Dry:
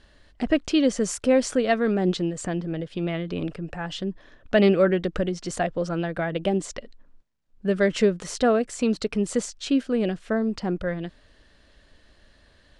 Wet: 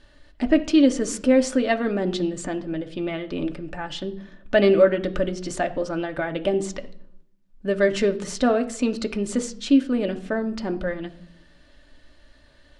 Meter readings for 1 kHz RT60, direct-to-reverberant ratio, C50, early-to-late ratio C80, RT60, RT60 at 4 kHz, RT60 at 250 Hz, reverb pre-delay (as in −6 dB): 0.65 s, 5.0 dB, 15.5 dB, 18.5 dB, 0.70 s, 0.55 s, 1.1 s, 3 ms